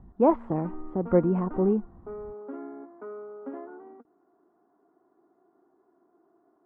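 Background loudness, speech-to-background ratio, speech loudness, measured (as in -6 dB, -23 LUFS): -42.5 LUFS, 16.5 dB, -26.0 LUFS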